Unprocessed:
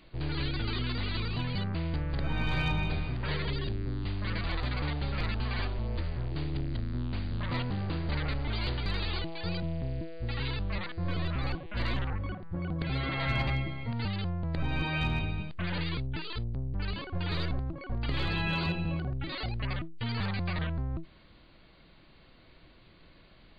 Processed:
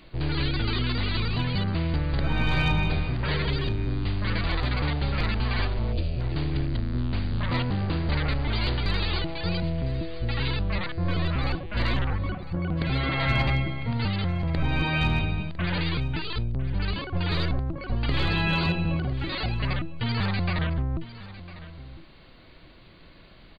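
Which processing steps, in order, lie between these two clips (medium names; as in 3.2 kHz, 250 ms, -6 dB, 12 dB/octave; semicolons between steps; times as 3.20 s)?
delay 1003 ms -16 dB; time-frequency box 5.93–6.20 s, 740–2300 Hz -12 dB; trim +6 dB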